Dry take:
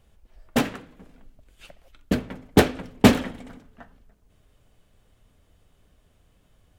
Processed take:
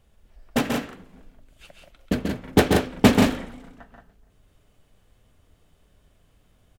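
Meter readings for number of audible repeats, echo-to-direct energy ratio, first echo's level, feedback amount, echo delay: 2, -2.0 dB, -5.0 dB, no regular repeats, 136 ms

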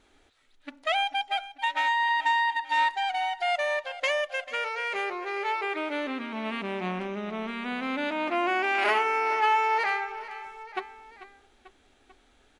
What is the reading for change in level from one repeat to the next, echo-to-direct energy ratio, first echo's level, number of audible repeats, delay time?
-4.5 dB, -14.0 dB, -15.5 dB, 3, 442 ms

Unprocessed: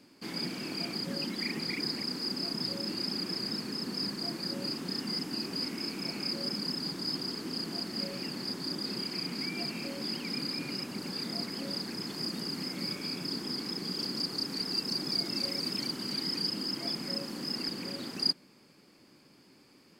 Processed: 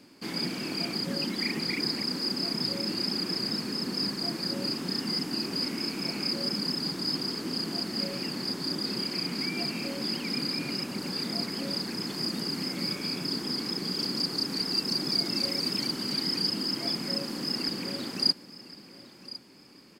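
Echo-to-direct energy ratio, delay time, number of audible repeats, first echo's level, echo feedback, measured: -16.5 dB, 1057 ms, 2, -17.0 dB, 29%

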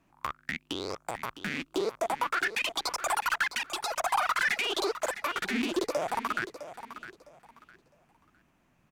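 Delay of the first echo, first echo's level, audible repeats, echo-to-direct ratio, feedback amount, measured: 658 ms, -12.5 dB, 2, -12.0 dB, 25%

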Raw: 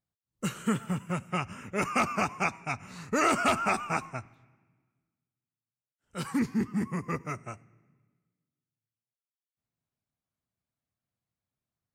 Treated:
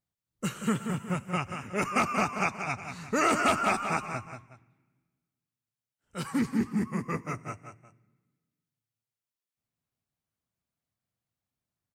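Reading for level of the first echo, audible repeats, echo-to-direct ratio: -8.0 dB, 2, -7.5 dB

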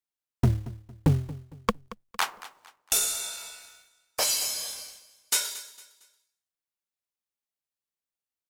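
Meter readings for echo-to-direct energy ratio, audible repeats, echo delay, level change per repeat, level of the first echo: -16.5 dB, 2, 228 ms, -9.0 dB, -17.0 dB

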